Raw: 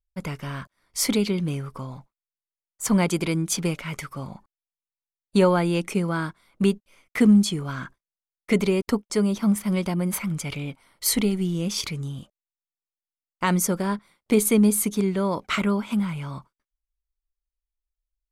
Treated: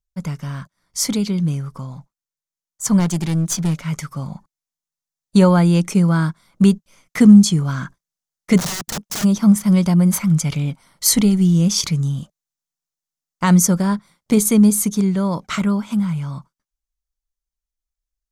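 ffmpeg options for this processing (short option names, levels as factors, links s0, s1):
-filter_complex "[0:a]asettb=1/sr,asplit=3[s0][s1][s2];[s0]atrim=end=2.994[s3];[s1]atrim=start=2.99:end=3.86,asetpts=PTS-STARTPTS,afade=t=in:d=0.004:c=qsin,afade=t=out:st=0.866:d=0.004:c=qsin,aeval=exprs='clip(val(0),-1,0.0316)':c=same[s4];[s2]atrim=start=3.856[s5];[s3][s4]acrossfade=d=0.004:c1=hsin:c2=qsin[s6];[s6][s5]acrossfade=d=0.004:c1=qsin:c2=hsin,asplit=3[s7][s8][s9];[s7]afade=t=out:st=8.57:d=0.02[s10];[s8]aeval=exprs='(mod(20*val(0)+1,2)-1)/20':c=same,afade=t=in:st=8.57:d=0.02,afade=t=out:st=9.23:d=0.02[s11];[s9]afade=t=in:st=9.23:d=0.02[s12];[s10][s11][s12]amix=inputs=3:normalize=0,equalizer=f=160:t=o:w=0.67:g=9,equalizer=f=400:t=o:w=0.67:g=-4,equalizer=f=2500:t=o:w=0.67:g=-5,equalizer=f=6300:t=o:w=0.67:g=7,dynaudnorm=f=280:g=31:m=3.76"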